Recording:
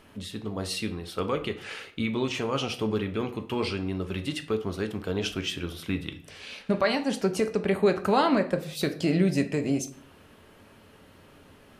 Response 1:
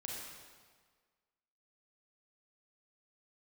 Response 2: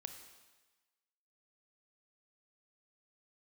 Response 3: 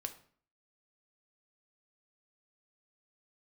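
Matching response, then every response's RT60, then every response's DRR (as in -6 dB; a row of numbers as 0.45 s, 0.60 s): 3; 1.6 s, 1.2 s, 0.50 s; -3.0 dB, 6.5 dB, 6.5 dB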